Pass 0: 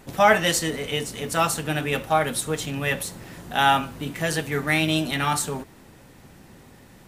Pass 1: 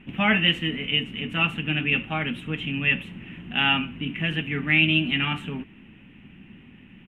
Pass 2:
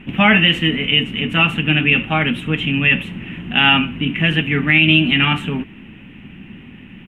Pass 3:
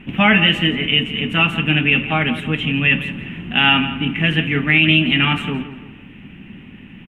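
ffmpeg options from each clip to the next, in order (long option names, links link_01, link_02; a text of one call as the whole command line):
ffmpeg -i in.wav -af "firequalizer=gain_entry='entry(130,0);entry(200,9);entry(510,-11);entry(1600,-2);entry(2800,13);entry(4400,-29)':delay=0.05:min_phase=1,volume=-2.5dB" out.wav
ffmpeg -i in.wav -af "alimiter=level_in=11dB:limit=-1dB:release=50:level=0:latency=1,volume=-1dB" out.wav
ffmpeg -i in.wav -filter_complex "[0:a]asplit=2[link_01][link_02];[link_02]adelay=170,lowpass=frequency=3600:poles=1,volume=-12dB,asplit=2[link_03][link_04];[link_04]adelay=170,lowpass=frequency=3600:poles=1,volume=0.4,asplit=2[link_05][link_06];[link_06]adelay=170,lowpass=frequency=3600:poles=1,volume=0.4,asplit=2[link_07][link_08];[link_08]adelay=170,lowpass=frequency=3600:poles=1,volume=0.4[link_09];[link_01][link_03][link_05][link_07][link_09]amix=inputs=5:normalize=0,volume=-1dB" out.wav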